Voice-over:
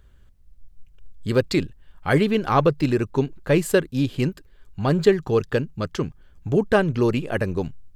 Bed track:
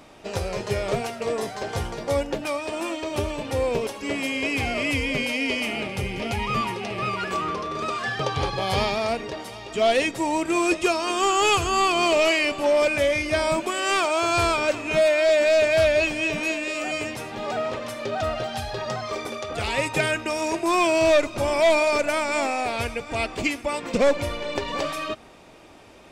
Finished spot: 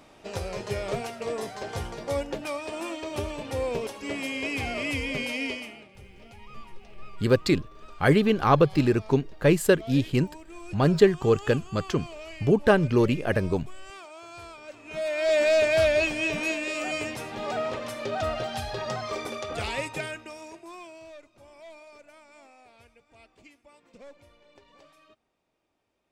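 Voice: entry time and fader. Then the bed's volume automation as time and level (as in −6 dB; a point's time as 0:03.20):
5.95 s, −1.0 dB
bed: 0:05.46 −5 dB
0:05.88 −22.5 dB
0:14.62 −22.5 dB
0:15.37 −2.5 dB
0:19.55 −2.5 dB
0:21.12 −29 dB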